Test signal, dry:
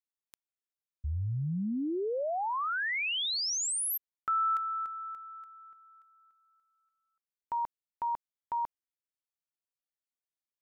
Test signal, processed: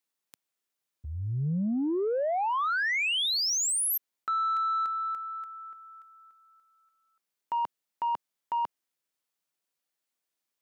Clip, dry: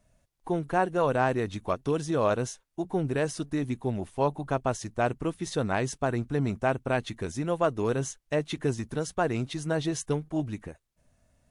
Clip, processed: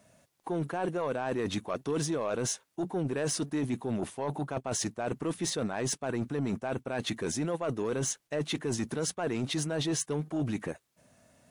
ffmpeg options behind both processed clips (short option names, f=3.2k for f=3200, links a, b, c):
-af "highpass=160,areverse,acompressor=threshold=-33dB:ratio=12:attack=1.3:release=81:knee=1:detection=rms,areverse,asoftclip=type=tanh:threshold=-31dB,volume=9dB"